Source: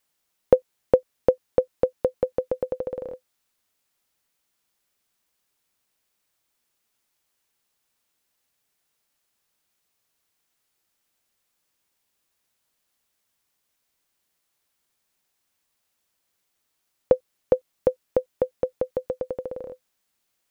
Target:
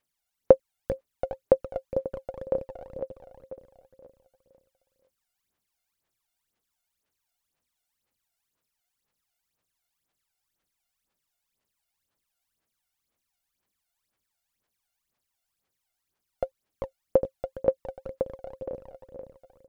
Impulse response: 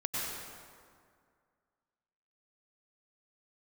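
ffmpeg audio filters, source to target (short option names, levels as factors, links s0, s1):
-af "aecho=1:1:429|858|1287|1716|2145:0.501|0.226|0.101|0.0457|0.0206,aphaser=in_gain=1:out_gain=1:delay=1.5:decay=0.75:speed=1.9:type=sinusoidal,asetrate=45938,aresample=44100,volume=0.282"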